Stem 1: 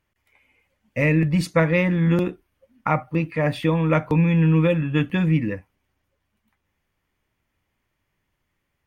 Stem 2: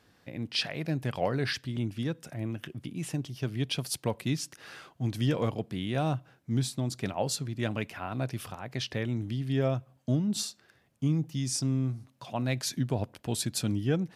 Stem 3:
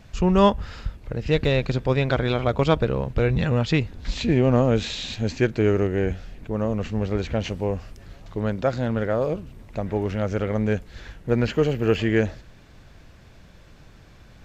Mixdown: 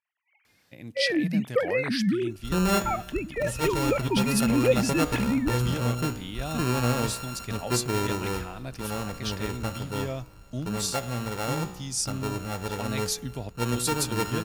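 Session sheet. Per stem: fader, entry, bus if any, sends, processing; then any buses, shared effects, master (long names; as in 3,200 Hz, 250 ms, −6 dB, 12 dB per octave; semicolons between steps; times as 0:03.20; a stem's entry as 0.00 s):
−6.5 dB, 0.00 s, no send, three sine waves on the formant tracks
−6.0 dB, 0.45 s, no send, high-shelf EQ 3,000 Hz +12 dB
+1.0 dB, 2.30 s, no send, samples sorted by size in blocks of 32 samples; tuned comb filter 61 Hz, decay 1.1 s, harmonics all, mix 70%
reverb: not used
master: no processing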